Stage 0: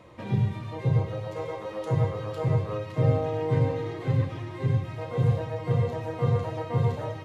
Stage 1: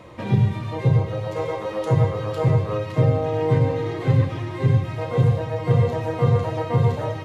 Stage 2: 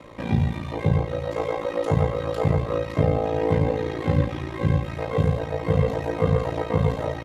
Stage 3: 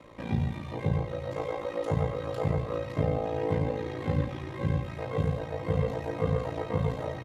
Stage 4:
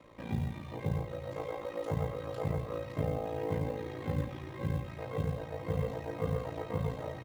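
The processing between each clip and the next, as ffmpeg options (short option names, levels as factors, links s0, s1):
-af "alimiter=limit=0.158:level=0:latency=1:release=432,volume=2.37"
-af "aecho=1:1:3.7:0.33,aeval=exprs='val(0)*sin(2*PI*28*n/s)':c=same,volume=1.26"
-af "aecho=1:1:96|404:0.15|0.141,volume=0.447"
-af "acrusher=bits=8:mode=log:mix=0:aa=0.000001,volume=0.531"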